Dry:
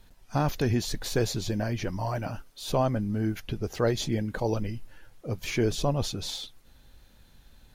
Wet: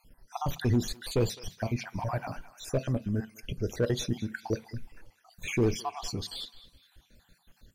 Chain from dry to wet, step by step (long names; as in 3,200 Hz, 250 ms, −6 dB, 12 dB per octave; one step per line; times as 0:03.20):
time-frequency cells dropped at random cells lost 57%
hard clipping −20 dBFS, distortion −20 dB
feedback echo with a band-pass in the loop 209 ms, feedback 45%, band-pass 2,000 Hz, level −13.5 dB
on a send at −15 dB: convolution reverb, pre-delay 3 ms